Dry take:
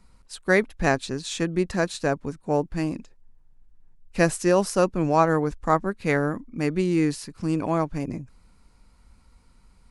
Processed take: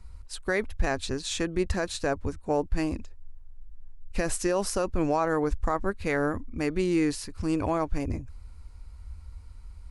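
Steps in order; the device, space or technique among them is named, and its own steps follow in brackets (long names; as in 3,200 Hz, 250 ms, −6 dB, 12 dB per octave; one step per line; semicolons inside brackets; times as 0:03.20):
car stereo with a boomy subwoofer (low shelf with overshoot 110 Hz +10.5 dB, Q 3; brickwall limiter −16 dBFS, peak gain reduction 10.5 dB)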